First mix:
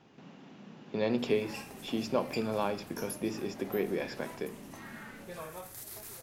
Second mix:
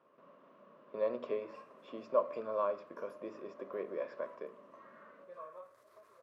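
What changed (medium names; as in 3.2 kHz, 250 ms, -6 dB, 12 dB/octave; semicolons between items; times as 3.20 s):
speech +4.5 dB; master: add two resonant band-passes 800 Hz, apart 0.87 oct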